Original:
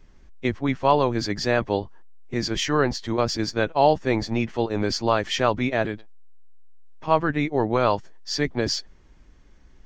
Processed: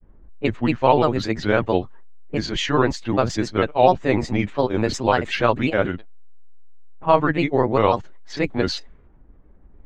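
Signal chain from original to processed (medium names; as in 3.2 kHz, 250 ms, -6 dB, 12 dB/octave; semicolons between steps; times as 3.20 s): level-controlled noise filter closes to 820 Hz, open at -19 dBFS; granulator, spray 14 ms, pitch spread up and down by 3 st; peaking EQ 5.3 kHz -10.5 dB 0.36 oct; trim +4.5 dB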